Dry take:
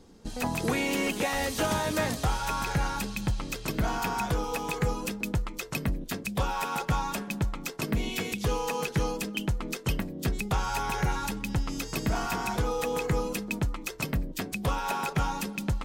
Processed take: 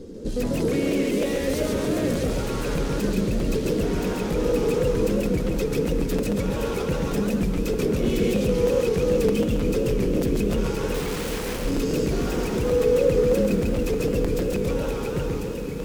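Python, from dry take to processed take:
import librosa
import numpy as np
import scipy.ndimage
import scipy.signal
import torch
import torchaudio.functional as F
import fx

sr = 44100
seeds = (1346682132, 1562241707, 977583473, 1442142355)

p1 = fx.fade_out_tail(x, sr, length_s=2.29)
p2 = fx.over_compress(p1, sr, threshold_db=-33.0, ratio=-1.0)
p3 = p1 + (p2 * 10.0 ** (2.0 / 20.0))
p4 = fx.hum_notches(p3, sr, base_hz=50, count=3)
p5 = 10.0 ** (-27.0 / 20.0) * np.tanh(p4 / 10.0 ** (-27.0 / 20.0))
p6 = fx.low_shelf_res(p5, sr, hz=620.0, db=8.5, q=3.0)
p7 = fx.overflow_wrap(p6, sr, gain_db=27.0, at=(10.94, 11.65))
p8 = fx.echo_diffused(p7, sr, ms=1198, feedback_pct=71, wet_db=-10)
p9 = fx.buffer_crackle(p8, sr, first_s=0.6, period_s=0.31, block=256, kind='repeat')
p10 = fx.echo_warbled(p9, sr, ms=139, feedback_pct=51, rate_hz=2.8, cents=198, wet_db=-3.0)
y = p10 * 10.0 ** (-4.0 / 20.0)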